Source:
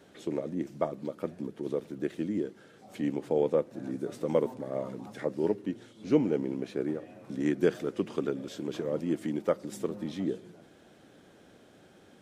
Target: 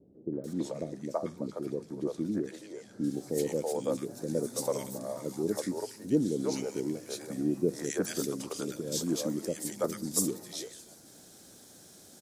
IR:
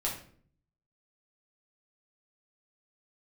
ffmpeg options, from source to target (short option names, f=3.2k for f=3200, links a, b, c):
-filter_complex "[0:a]acrossover=split=480|1600[a][b][c];[b]adelay=330[d];[c]adelay=440[e];[a][d][e]amix=inputs=3:normalize=0,aexciter=amount=9:drive=2.5:freq=4.3k,asettb=1/sr,asplit=3[f][g][h];[f]atrim=end=0.534[i];[g]atrim=start=0.53:end=3.04,asetpts=PTS-STARTPTS,afade=t=in:d=0.004:c=qsin,afade=t=out:st=2.506:d=0.004:c=qsin,aemphasis=mode=reproduction:type=75fm[j];[h]atrim=start=3.036[k];[i][j]acrossfade=d=0.004:c1=hsin:c2=qsin[l];[l][k]acrossfade=d=0.004:c1=qsin:c2=hsin"